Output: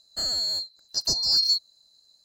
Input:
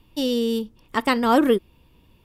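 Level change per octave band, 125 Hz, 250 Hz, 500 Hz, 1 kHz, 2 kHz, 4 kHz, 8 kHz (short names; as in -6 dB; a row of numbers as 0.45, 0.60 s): n/a, -28.5 dB, -24.5 dB, -24.5 dB, under -20 dB, +10.5 dB, +11.0 dB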